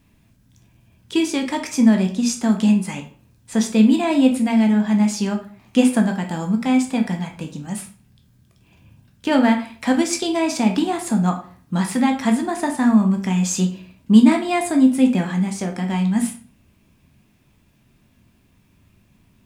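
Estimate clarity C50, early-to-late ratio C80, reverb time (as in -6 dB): 10.0 dB, 14.5 dB, 0.45 s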